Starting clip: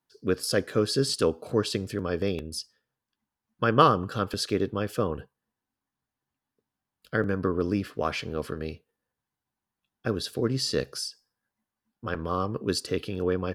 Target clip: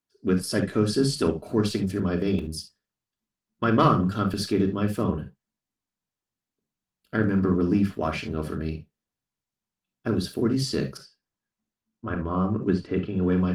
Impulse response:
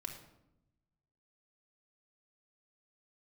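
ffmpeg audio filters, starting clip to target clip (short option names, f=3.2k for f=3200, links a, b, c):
-filter_complex "[0:a]asettb=1/sr,asplit=3[a][b][c];[a]atrim=end=10.974[d];[b]atrim=start=10.97:end=13.24,asetpts=PTS-STARTPTS,afade=t=in:d=0.004:c=qsin,afade=t=out:st=2.266:d=0.004:c=qsin,lowpass=2.2k[e];[c]atrim=start=13.236[f];[d][e]acrossfade=d=0.004:c1=hsin:c2=qsin[g];[g][f]acrossfade=d=0.004:c1=qsin:c2=hsin,agate=range=-9dB:threshold=-46dB:ratio=16:detection=peak,equalizer=f=200:w=2.2:g=9.5,asoftclip=type=tanh:threshold=-10.5dB,aeval=exprs='0.398*(cos(1*acos(clip(val(0)/0.398,-1,1)))-cos(1*PI/2))+0.0355*(cos(3*acos(clip(val(0)/0.398,-1,1)))-cos(3*PI/2))':c=same[h];[1:a]atrim=start_sample=2205,atrim=end_sample=3528[i];[h][i]afir=irnorm=-1:irlink=0,volume=6dB" -ar 48000 -c:a libopus -b:a 24k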